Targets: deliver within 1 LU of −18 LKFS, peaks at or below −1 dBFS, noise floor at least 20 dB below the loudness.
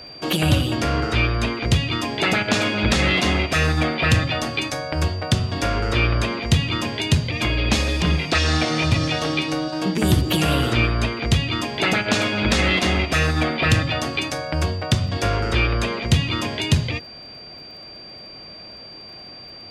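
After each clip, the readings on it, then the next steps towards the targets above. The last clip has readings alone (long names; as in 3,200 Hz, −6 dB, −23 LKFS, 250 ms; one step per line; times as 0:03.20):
crackle rate 24 per second; interfering tone 4,700 Hz; level of the tone −38 dBFS; integrated loudness −20.5 LKFS; sample peak −5.5 dBFS; target loudness −18.0 LKFS
→ click removal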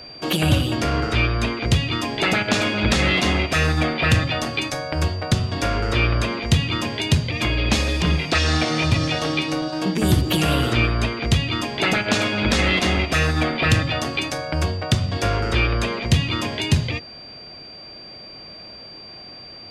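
crackle rate 0 per second; interfering tone 4,700 Hz; level of the tone −38 dBFS
→ notch filter 4,700 Hz, Q 30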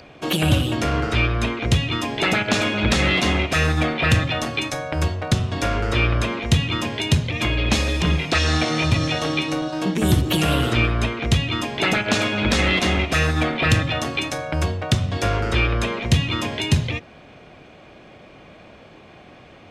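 interfering tone none found; integrated loudness −21.0 LKFS; sample peak −5.0 dBFS; target loudness −18.0 LKFS
→ level +3 dB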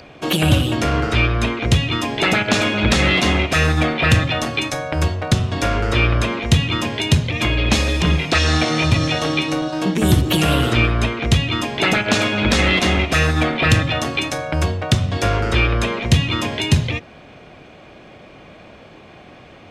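integrated loudness −18.0 LKFS; sample peak −2.0 dBFS; background noise floor −43 dBFS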